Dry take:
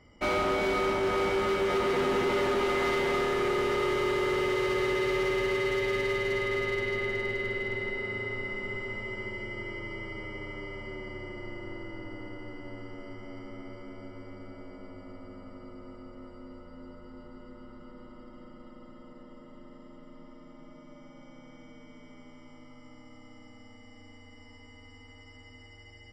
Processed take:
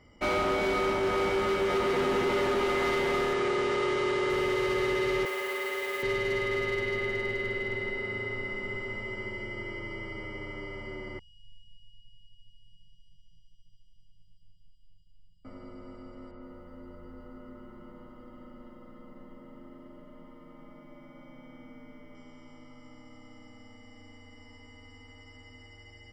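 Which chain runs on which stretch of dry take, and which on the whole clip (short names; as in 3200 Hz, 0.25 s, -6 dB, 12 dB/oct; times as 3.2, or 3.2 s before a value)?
3.33–4.3 LPF 9300 Hz 24 dB/oct + low shelf 63 Hz -10.5 dB
5.25–6.03 BPF 540–6400 Hz + air absorption 120 m + modulation noise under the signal 16 dB
11.19–15.45 resonator 290 Hz, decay 0.26 s, mix 70% + robotiser 322 Hz + brick-wall FIR band-stop 200–2800 Hz
16.31–22.15 LPF 2800 Hz + lo-fi delay 0.11 s, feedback 55%, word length 12-bit, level -11 dB
whole clip: dry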